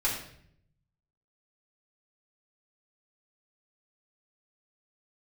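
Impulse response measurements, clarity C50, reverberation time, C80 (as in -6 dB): 4.5 dB, 0.65 s, 7.5 dB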